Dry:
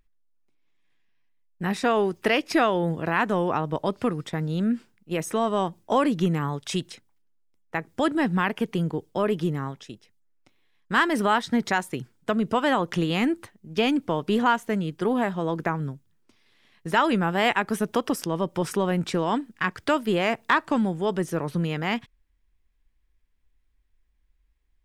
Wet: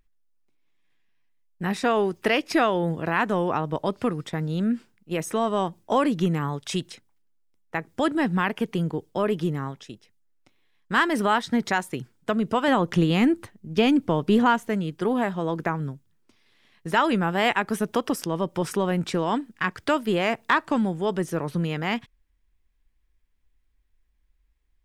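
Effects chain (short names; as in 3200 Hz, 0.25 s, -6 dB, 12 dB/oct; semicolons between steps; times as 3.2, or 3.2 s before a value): 12.68–14.69 low shelf 340 Hz +6.5 dB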